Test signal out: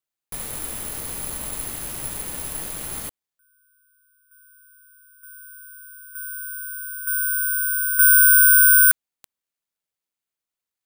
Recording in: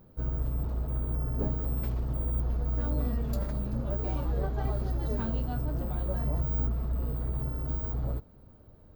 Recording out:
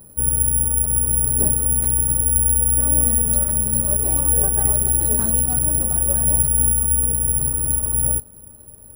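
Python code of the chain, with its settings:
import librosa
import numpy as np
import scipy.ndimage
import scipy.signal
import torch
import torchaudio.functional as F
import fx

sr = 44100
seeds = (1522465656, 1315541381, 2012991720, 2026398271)

y = (np.kron(scipy.signal.resample_poly(x, 1, 4), np.eye(4)[0]) * 4)[:len(x)]
y = y * librosa.db_to_amplitude(5.5)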